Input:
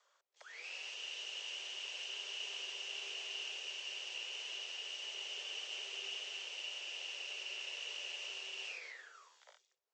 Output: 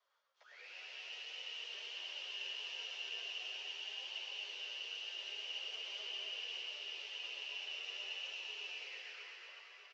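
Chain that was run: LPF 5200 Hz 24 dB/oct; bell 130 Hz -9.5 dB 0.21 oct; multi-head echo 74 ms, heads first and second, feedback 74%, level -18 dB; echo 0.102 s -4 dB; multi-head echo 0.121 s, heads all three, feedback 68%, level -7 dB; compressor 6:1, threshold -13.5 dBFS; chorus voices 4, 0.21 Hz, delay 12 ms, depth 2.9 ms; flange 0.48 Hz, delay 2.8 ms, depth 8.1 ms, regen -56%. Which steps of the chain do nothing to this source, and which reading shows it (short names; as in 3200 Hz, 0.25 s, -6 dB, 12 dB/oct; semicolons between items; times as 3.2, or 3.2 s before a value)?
bell 130 Hz: input band starts at 320 Hz; compressor, threshold -13.5 dBFS: input peak -26.0 dBFS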